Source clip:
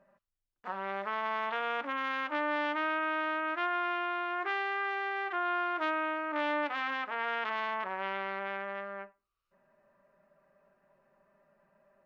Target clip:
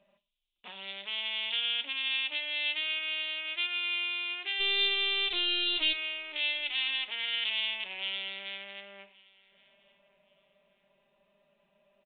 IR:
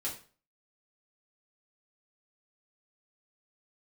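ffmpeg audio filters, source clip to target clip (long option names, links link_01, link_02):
-filter_complex "[0:a]aecho=1:1:4.9:0.31,acrossover=split=1700[link_01][link_02];[link_01]acompressor=threshold=-43dB:ratio=6[link_03];[link_02]asuperpass=centerf=2600:order=8:qfactor=0.55[link_04];[link_03][link_04]amix=inputs=2:normalize=0,asplit=3[link_05][link_06][link_07];[link_05]afade=type=out:start_time=4.59:duration=0.02[link_08];[link_06]aeval=exprs='0.0376*(cos(1*acos(clip(val(0)/0.0376,-1,1)))-cos(1*PI/2))+0.0188*(cos(6*acos(clip(val(0)/0.0376,-1,1)))-cos(6*PI/2))':channel_layout=same,afade=type=in:start_time=4.59:duration=0.02,afade=type=out:start_time=5.92:duration=0.02[link_09];[link_07]afade=type=in:start_time=5.92:duration=0.02[link_10];[link_08][link_09][link_10]amix=inputs=3:normalize=0,asplit=2[link_11][link_12];[link_12]adelay=1121,lowpass=frequency=3000:poles=1,volume=-23.5dB,asplit=2[link_13][link_14];[link_14]adelay=1121,lowpass=frequency=3000:poles=1,volume=0.36[link_15];[link_11][link_13][link_15]amix=inputs=3:normalize=0,asplit=2[link_16][link_17];[1:a]atrim=start_sample=2205[link_18];[link_17][link_18]afir=irnorm=-1:irlink=0,volume=-12dB[link_19];[link_16][link_19]amix=inputs=2:normalize=0,aexciter=amount=15.1:drive=4.9:freq=2600,aresample=8000,aresample=44100,volume=-5.5dB"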